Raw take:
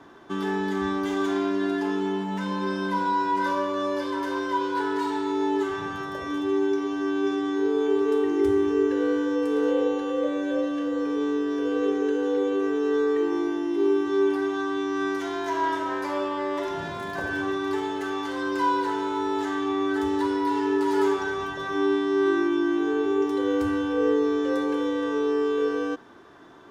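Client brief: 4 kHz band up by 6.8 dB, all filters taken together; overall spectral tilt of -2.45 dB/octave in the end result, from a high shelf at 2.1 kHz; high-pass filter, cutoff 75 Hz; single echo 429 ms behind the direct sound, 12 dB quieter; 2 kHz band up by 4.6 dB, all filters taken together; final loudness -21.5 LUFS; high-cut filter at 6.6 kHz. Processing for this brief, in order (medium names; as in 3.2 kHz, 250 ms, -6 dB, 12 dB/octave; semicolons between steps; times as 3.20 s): high-pass 75 Hz; low-pass 6.6 kHz; peaking EQ 2 kHz +3.5 dB; treble shelf 2.1 kHz +4.5 dB; peaking EQ 4 kHz +3.5 dB; delay 429 ms -12 dB; trim +3 dB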